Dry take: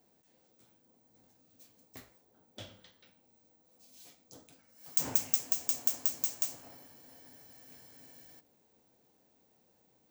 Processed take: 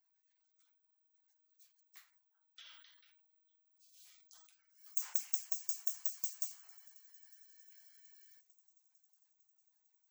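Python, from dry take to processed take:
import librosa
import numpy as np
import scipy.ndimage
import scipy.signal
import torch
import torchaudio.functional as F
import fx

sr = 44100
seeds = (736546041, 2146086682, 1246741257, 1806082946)

y = scipy.signal.sosfilt(scipy.signal.butter(4, 1100.0, 'highpass', fs=sr, output='sos'), x)
y = fx.echo_wet_highpass(y, sr, ms=452, feedback_pct=75, hz=3100.0, wet_db=-24.0)
y = fx.spec_gate(y, sr, threshold_db=-20, keep='strong')
y = fx.sustainer(y, sr, db_per_s=35.0, at=(2.64, 4.47), fade=0.02)
y = y * librosa.db_to_amplitude(-6.0)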